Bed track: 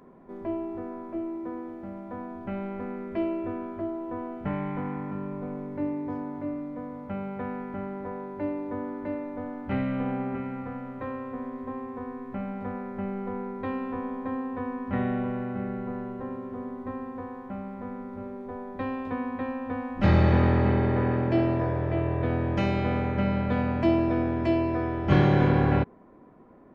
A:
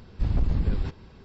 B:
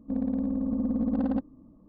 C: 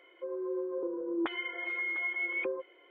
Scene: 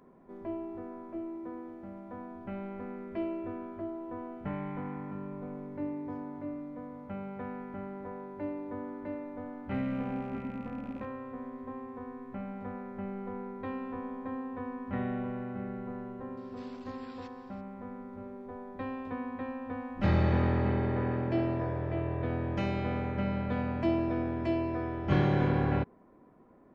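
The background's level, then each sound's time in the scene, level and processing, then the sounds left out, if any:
bed track -6 dB
9.65 add B -15 dB + rattling part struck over -42 dBFS, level -31 dBFS
16.37 add A -6.5 dB + Bessel high-pass 1500 Hz
not used: C

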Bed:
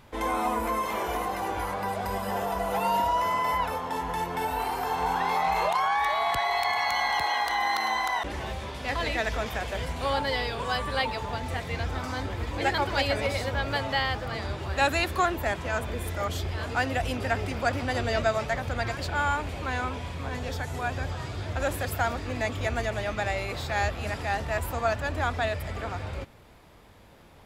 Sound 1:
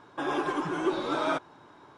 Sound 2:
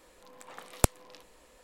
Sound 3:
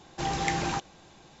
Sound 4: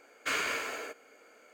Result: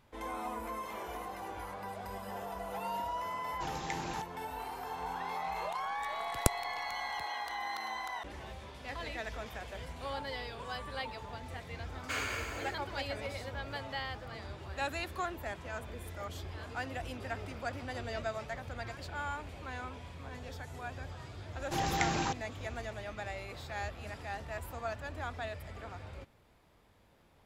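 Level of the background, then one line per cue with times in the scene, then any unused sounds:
bed -12 dB
3.42 add 3 -10.5 dB
5.62 add 2 -4 dB
11.83 add 4 -5 dB
16.2 add 1 -15 dB + compressor, threshold -40 dBFS
21.53 add 3 -3 dB

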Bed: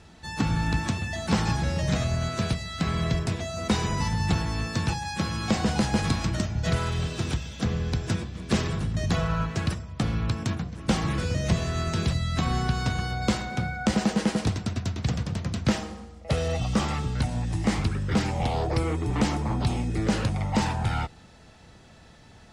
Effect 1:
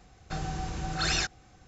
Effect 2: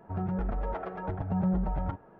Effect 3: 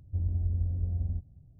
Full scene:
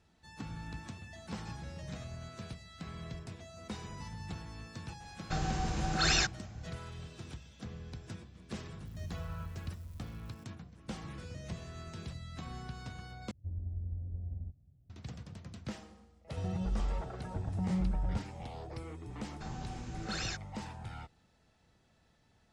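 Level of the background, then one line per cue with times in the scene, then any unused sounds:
bed -18 dB
5 add 1
8.85 add 3 -15 dB + switching spikes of -30 dBFS
13.31 replace with 3 -9 dB + HPF 42 Hz
16.27 add 2 -10 dB + low shelf 170 Hz +10 dB
19.1 add 1 -10.5 dB

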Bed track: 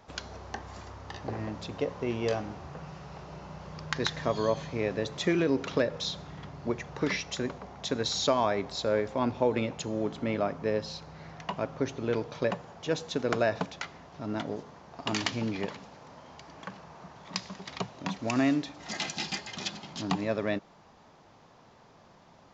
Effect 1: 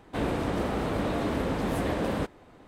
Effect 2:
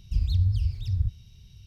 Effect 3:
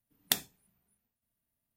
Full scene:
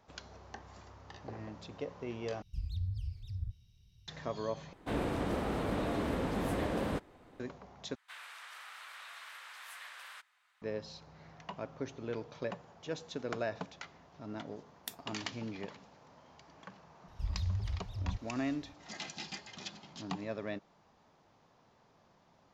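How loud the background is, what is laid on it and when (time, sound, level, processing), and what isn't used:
bed track -9.5 dB
2.42 replace with 2 -13.5 dB
4.73 replace with 1 -5.5 dB
7.95 replace with 1 -8.5 dB + HPF 1300 Hz 24 dB/oct
14.56 add 3 -15 dB + spectral noise reduction 11 dB
17.08 add 2 -11.5 dB

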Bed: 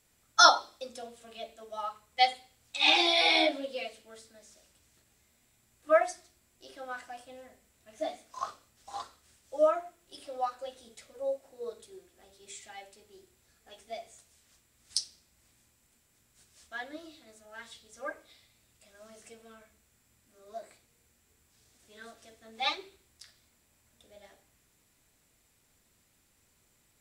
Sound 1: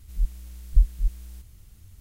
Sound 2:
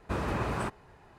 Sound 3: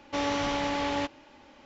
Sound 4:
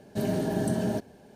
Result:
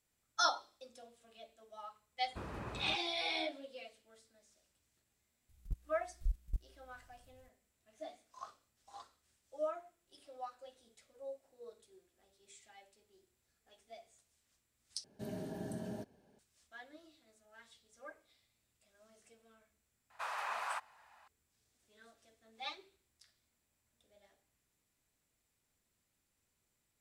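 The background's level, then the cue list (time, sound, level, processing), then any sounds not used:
bed -13 dB
2.26 add 2 -13.5 dB
5.49 add 1 -11.5 dB + level quantiser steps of 18 dB
15.04 replace with 4 -15.5 dB
20.1 add 2 -3 dB + inverse Chebyshev high-pass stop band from 370 Hz
not used: 3

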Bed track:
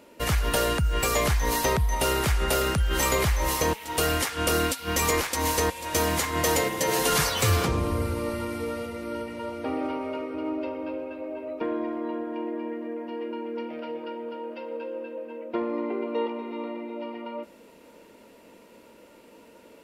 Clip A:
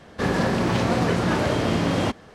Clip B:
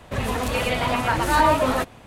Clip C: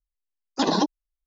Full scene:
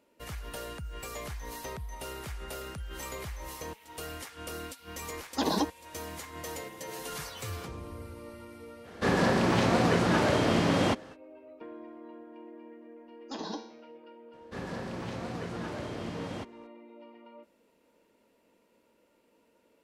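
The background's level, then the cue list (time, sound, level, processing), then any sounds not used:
bed track -16 dB
4.79 add C -6.5 dB
8.83 add A -2 dB, fades 0.05 s + low shelf 120 Hz -6.5 dB
12.72 add C -5.5 dB + resonator 110 Hz, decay 0.63 s, mix 80%
14.33 add A -16 dB
not used: B

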